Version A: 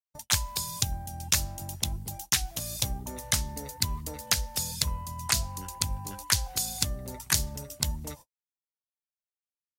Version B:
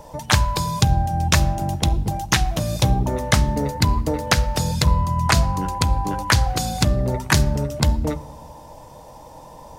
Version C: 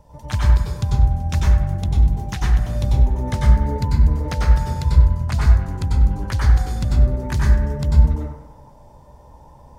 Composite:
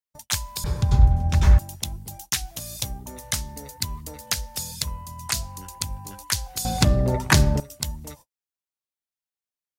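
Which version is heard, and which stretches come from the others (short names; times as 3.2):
A
0.64–1.59 from C
6.65–7.6 from B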